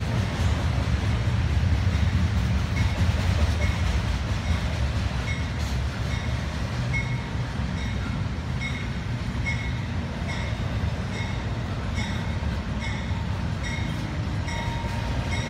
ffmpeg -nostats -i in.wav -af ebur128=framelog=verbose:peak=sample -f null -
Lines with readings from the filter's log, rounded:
Integrated loudness:
  I:         -27.1 LUFS
  Threshold: -37.1 LUFS
Loudness range:
  LRA:         4.5 LU
  Threshold: -47.3 LUFS
  LRA low:   -28.9 LUFS
  LRA high:  -24.5 LUFS
Sample peak:
  Peak:      -10.9 dBFS